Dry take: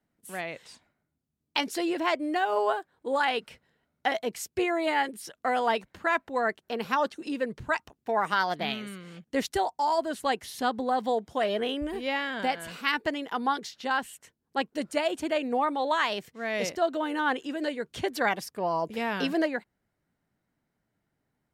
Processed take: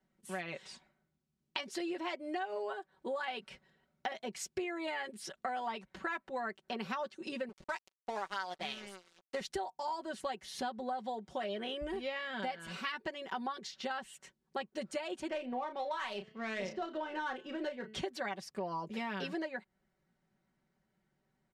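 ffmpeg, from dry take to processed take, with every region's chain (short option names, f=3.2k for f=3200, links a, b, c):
-filter_complex "[0:a]asettb=1/sr,asplit=3[a][b][c];[a]atrim=end=7.494[d];[b]atrim=start=7.49:end=9.41,asetpts=PTS-STARTPTS,afade=t=in:d=0.004:c=qsin,afade=t=out:st=1.916:d=0.004:c=qsin,aeval=exprs='sgn(val(0))*max(abs(val(0))-0.00944,0)':c=same,bass=f=250:g=-9,treble=f=4k:g=4[e];[c]atrim=start=9.406[f];[d][e]acrossfade=d=0.004:c1=hsin:c2=qsin[g];[g][f]acrossfade=d=0.004:c1=qsin:c2=hsin,asettb=1/sr,asplit=3[h][i][j];[h]atrim=end=15.304[k];[i]atrim=start=15.3:end=17.95,asetpts=PTS-STARTPTS,afade=t=in:d=0.004:c=qsin,afade=t=out:st=2.646:d=0.004:c=qsin,bandreject=f=216.1:t=h:w=4,bandreject=f=432.2:t=h:w=4,bandreject=f=648.3:t=h:w=4,bandreject=f=864.4:t=h:w=4,bandreject=f=1.0805k:t=h:w=4,bandreject=f=1.2966k:t=h:w=4,bandreject=f=1.5127k:t=h:w=4,bandreject=f=1.7288k:t=h:w=4,bandreject=f=1.9449k:t=h:w=4,bandreject=f=2.161k:t=h:w=4,bandreject=f=2.3771k:t=h:w=4,bandreject=f=2.5932k:t=h:w=4,bandreject=f=2.8093k:t=h:w=4,bandreject=f=3.0254k:t=h:w=4,bandreject=f=3.2415k:t=h:w=4,bandreject=f=3.4576k:t=h:w=4,bandreject=f=3.6737k:t=h:w=4,bandreject=f=3.8898k:t=h:w=4,bandreject=f=4.1059k:t=h:w=4,bandreject=f=4.322k:t=h:w=4,bandreject=f=4.5381k:t=h:w=4,bandreject=f=4.7542k:t=h:w=4,bandreject=f=4.9703k:t=h:w=4,bandreject=f=5.1864k:t=h:w=4,bandreject=f=5.4025k:t=h:w=4,bandreject=f=5.6186k:t=h:w=4,bandreject=f=5.8347k:t=h:w=4,bandreject=f=6.0508k:t=h:w=4,bandreject=f=6.2669k:t=h:w=4,bandreject=f=6.483k:t=h:w=4,bandreject=f=6.6991k:t=h:w=4,bandreject=f=6.9152k:t=h:w=4,bandreject=f=7.1313k:t=h:w=4,adynamicsmooth=sensitivity=4.5:basefreq=2.6k,asplit=2[l][m];[m]adelay=32,volume=-8.5dB[n];[l][n]amix=inputs=2:normalize=0,atrim=end_sample=116865[o];[j]atrim=start=17.946[p];[k][o]acrossfade=d=0.004:c1=hsin:c2=qsin[q];[q][p]acrossfade=d=0.004:c1=qsin:c2=hsin,lowpass=7.5k,aecho=1:1:5.3:0.77,acompressor=threshold=-34dB:ratio=6,volume=-2dB"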